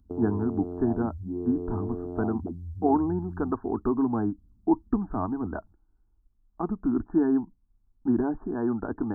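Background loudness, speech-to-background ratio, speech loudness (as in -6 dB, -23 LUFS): -36.0 LUFS, 7.5 dB, -28.5 LUFS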